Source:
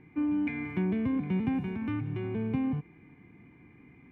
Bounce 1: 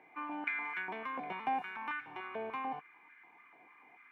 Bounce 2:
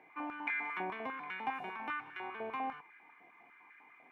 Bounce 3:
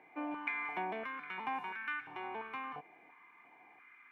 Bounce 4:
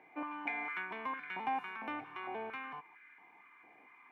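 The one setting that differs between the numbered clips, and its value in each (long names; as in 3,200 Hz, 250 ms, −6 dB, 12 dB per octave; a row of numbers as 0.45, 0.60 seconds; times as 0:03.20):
high-pass on a step sequencer, speed: 6.8, 10, 2.9, 4.4 Hertz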